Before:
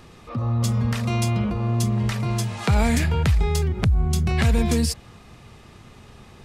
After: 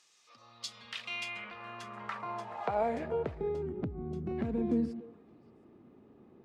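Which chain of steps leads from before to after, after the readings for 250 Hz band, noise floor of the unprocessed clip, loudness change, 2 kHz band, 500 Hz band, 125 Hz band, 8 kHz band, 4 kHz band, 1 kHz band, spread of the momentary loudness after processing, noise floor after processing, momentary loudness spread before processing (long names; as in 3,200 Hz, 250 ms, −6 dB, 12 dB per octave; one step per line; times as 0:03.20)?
−11.5 dB, −47 dBFS, −14.0 dB, −11.0 dB, −5.0 dB, −24.5 dB, below −20 dB, −12.5 dB, −7.0 dB, 12 LU, −62 dBFS, 5 LU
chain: band-pass filter sweep 6,600 Hz → 290 Hz, 0:00.16–0:03.68
bass and treble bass −6 dB, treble −4 dB
echo through a band-pass that steps 143 ms, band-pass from 190 Hz, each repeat 1.4 octaves, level −10.5 dB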